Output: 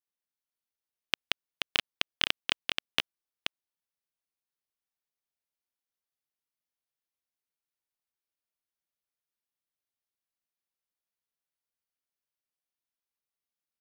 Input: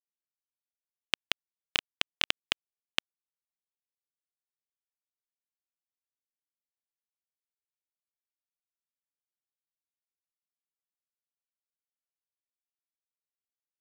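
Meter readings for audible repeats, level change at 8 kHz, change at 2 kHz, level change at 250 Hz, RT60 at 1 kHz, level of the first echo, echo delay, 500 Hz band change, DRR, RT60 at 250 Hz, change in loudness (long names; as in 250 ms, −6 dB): 1, −1.0 dB, +1.0 dB, +1.5 dB, no reverb audible, −4.5 dB, 480 ms, +1.0 dB, no reverb audible, no reverb audible, +0.5 dB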